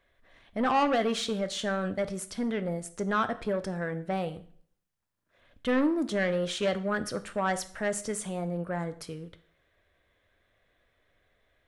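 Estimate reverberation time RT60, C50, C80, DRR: 0.55 s, 15.5 dB, 19.5 dB, 10.5 dB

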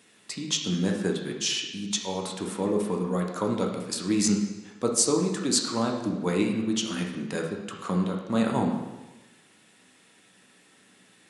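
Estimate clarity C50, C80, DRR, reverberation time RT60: 4.0 dB, 7.0 dB, 0.5 dB, 1.1 s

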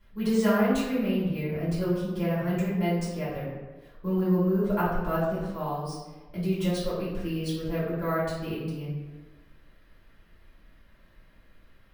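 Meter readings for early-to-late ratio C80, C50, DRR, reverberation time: 3.5 dB, 0.5 dB, -11.0 dB, 1.3 s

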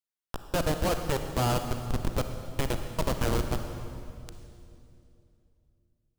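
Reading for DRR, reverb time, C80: 6.5 dB, 2.7 s, 8.0 dB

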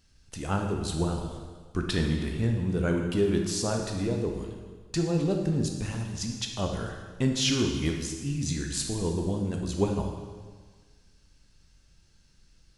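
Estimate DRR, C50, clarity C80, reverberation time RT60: 2.0 dB, 4.0 dB, 6.0 dB, 1.5 s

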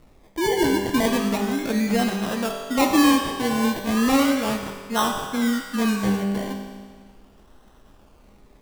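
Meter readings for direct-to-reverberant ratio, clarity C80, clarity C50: 1.5 dB, 6.0 dB, 4.5 dB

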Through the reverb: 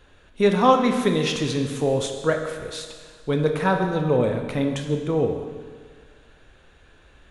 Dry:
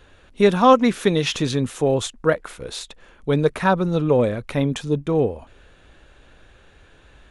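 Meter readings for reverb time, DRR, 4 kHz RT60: 1.7 s, 4.0 dB, 1.6 s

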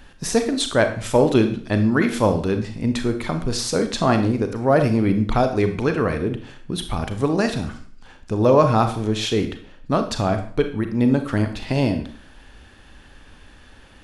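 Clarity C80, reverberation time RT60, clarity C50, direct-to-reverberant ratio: 13.5 dB, 0.50 s, 10.0 dB, 7.0 dB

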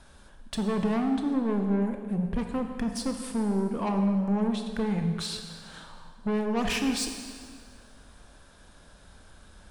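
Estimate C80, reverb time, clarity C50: 7.0 dB, 1.9 s, 6.0 dB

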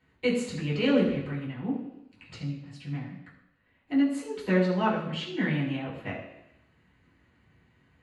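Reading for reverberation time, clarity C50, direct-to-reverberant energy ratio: 0.85 s, 5.0 dB, -9.0 dB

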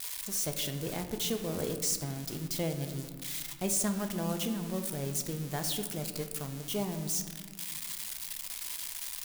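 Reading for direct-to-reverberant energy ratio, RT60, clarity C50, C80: 6.0 dB, 1.8 s, 8.5 dB, 10.0 dB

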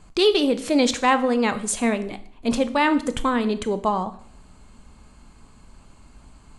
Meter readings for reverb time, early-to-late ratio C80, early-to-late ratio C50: 0.55 s, 18.0 dB, 15.0 dB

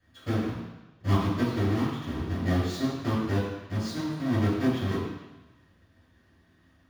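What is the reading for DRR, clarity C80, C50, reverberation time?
-17.0 dB, 3.0 dB, 1.0 dB, 1.1 s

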